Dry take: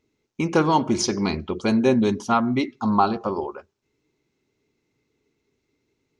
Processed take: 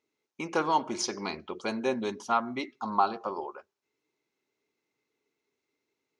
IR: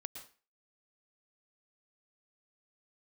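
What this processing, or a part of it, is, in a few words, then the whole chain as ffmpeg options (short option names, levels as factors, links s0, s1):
filter by subtraction: -filter_complex "[0:a]asplit=2[s0][s1];[s1]lowpass=830,volume=-1[s2];[s0][s2]amix=inputs=2:normalize=0,volume=0.447"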